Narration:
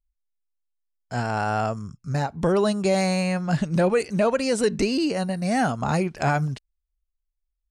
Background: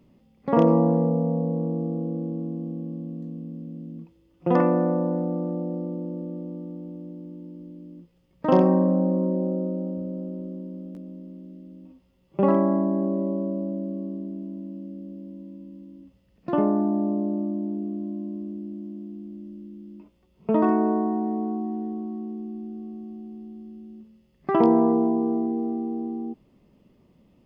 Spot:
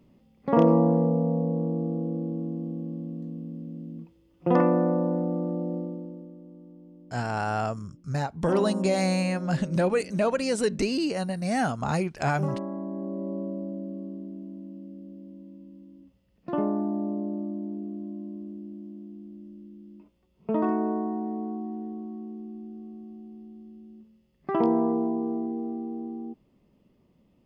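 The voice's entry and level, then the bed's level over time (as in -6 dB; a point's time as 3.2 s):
6.00 s, -3.5 dB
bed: 5.77 s -1 dB
6.36 s -12.5 dB
12.69 s -12.5 dB
13.38 s -5 dB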